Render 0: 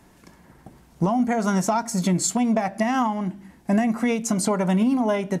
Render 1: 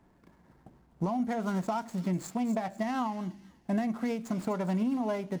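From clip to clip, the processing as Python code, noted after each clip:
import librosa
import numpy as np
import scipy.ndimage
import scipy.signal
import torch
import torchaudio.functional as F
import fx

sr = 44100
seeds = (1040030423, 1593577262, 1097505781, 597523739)

y = scipy.signal.medfilt(x, 15)
y = fx.echo_wet_highpass(y, sr, ms=248, feedback_pct=33, hz=3400.0, wet_db=-9.0)
y = y * 10.0 ** (-9.0 / 20.0)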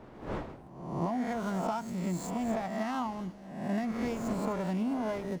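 y = fx.spec_swells(x, sr, rise_s=0.9)
y = fx.dmg_wind(y, sr, seeds[0], corner_hz=610.0, level_db=-43.0)
y = y * 10.0 ** (-3.5 / 20.0)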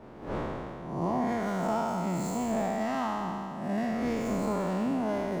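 y = fx.spec_trails(x, sr, decay_s=2.38)
y = fx.peak_eq(y, sr, hz=450.0, db=2.5, octaves=2.6)
y = y * 10.0 ** (-2.0 / 20.0)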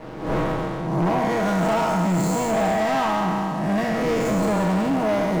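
y = x + 0.64 * np.pad(x, (int(6.3 * sr / 1000.0), 0))[:len(x)]
y = fx.leveller(y, sr, passes=3)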